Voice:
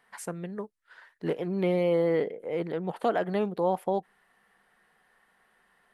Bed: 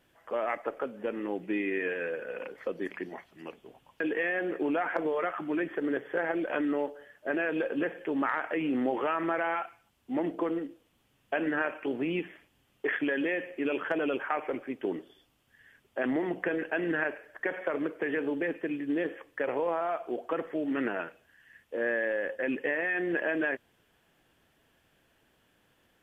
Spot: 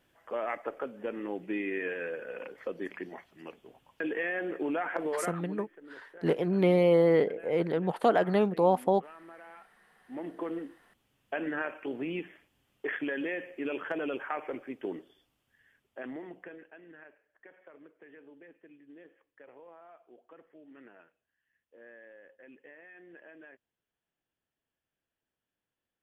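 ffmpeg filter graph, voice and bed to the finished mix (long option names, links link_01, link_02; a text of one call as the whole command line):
ffmpeg -i stem1.wav -i stem2.wav -filter_complex "[0:a]adelay=5000,volume=2.5dB[link_01];[1:a]volume=14dB,afade=type=out:start_time=5.16:duration=0.47:silence=0.125893,afade=type=in:start_time=9.84:duration=0.74:silence=0.149624,afade=type=out:start_time=14.85:duration=1.93:silence=0.112202[link_02];[link_01][link_02]amix=inputs=2:normalize=0" out.wav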